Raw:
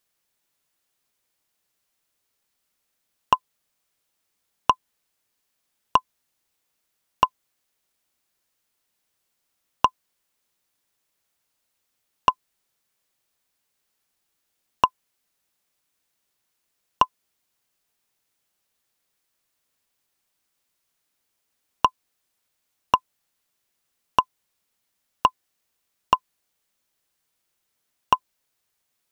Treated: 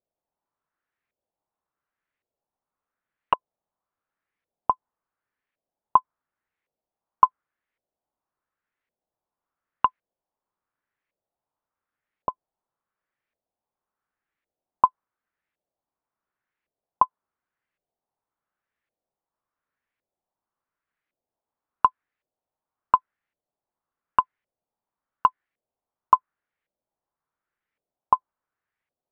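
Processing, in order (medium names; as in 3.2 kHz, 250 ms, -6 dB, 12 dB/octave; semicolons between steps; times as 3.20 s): dynamic bell 1.4 kHz, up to +4 dB, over -33 dBFS, Q 1; LFO low-pass saw up 0.9 Hz 570–2200 Hz; trim -7 dB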